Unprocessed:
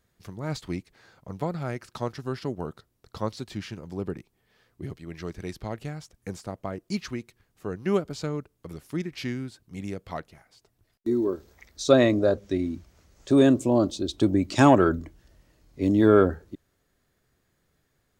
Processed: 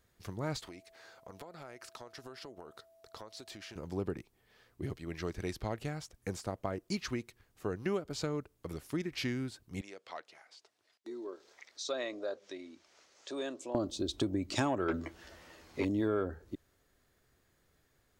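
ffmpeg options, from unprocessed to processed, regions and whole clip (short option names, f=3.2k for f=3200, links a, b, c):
-filter_complex "[0:a]asettb=1/sr,asplit=3[a][b][c];[a]atrim=end=0.634[d];[b]atrim=start=0.63:end=3.76,asetpts=PTS-STARTPTS,afade=t=in:d=0.004:c=qsin,afade=t=out:st=3.126:d=0.004:c=qsin,bass=f=250:g=-12,treble=f=4k:g=2,acompressor=threshold=-43dB:ratio=12:attack=3.2:release=140:knee=1:detection=peak,aeval=exprs='val(0)+0.000891*sin(2*PI*660*n/s)':c=same[e];[c]atrim=start=3.756[f];[d][e]acrossfade=d=0.004:c1=hsin:c2=qsin[g];[g][f]acrossfade=d=0.004:c1=qsin:c2=hsin,asettb=1/sr,asplit=3[h][i][j];[h]atrim=end=9.814[k];[i]atrim=start=9.81:end=13.75,asetpts=PTS-STARTPTS,afade=t=in:d=0.004:c=qsin,afade=t=out:st=3.936:d=0.004:c=qsin,highshelf=f=3.4k:g=8.5,acompressor=threshold=-53dB:ratio=1.5:attack=3.2:release=140:knee=1:detection=peak,highpass=460,lowpass=5.3k[l];[j]atrim=start=13.746[m];[k][l]acrossfade=d=0.004:c1=hsin:c2=qsin[n];[n][m]acrossfade=d=0.004:c1=qsin:c2=hsin,asettb=1/sr,asplit=3[o][p][q];[o]atrim=end=14.884[r];[p]atrim=start=14.88:end=15.85,asetpts=PTS-STARTPTS,afade=t=in:d=0.004:c=qsin,afade=t=out:st=0.966:d=0.004:c=qsin,asplit=2[s][t];[t]highpass=f=720:p=1,volume=19dB,asoftclip=type=tanh:threshold=-11dB[u];[s][u]amix=inputs=2:normalize=0,lowpass=f=3.1k:p=1,volume=-6dB,asplit=2[v][w];[w]adelay=12,volume=-4.5dB[x];[v][x]amix=inputs=2:normalize=0,atrim=end_sample=42777[y];[q]atrim=start=15.846[z];[r][y]acrossfade=d=0.004:c1=hsin:c2=qsin[aa];[aa][z]acrossfade=d=0.004:c1=qsin:c2=hsin,equalizer=f=170:w=1.4:g=-4.5,acompressor=threshold=-31dB:ratio=4"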